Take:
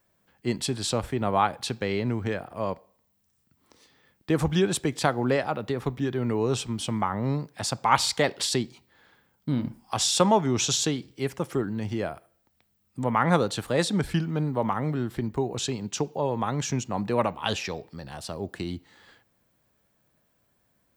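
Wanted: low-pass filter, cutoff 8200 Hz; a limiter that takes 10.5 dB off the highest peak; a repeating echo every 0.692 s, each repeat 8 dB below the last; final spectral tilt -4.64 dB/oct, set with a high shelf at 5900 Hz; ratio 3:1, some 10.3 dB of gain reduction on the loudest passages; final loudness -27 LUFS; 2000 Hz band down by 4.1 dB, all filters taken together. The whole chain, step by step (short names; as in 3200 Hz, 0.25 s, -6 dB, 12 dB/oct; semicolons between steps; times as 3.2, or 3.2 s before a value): LPF 8200 Hz; bell 2000 Hz -6 dB; high shelf 5900 Hz +6 dB; compressor 3:1, threshold -31 dBFS; limiter -25.5 dBFS; feedback echo 0.692 s, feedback 40%, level -8 dB; gain +9 dB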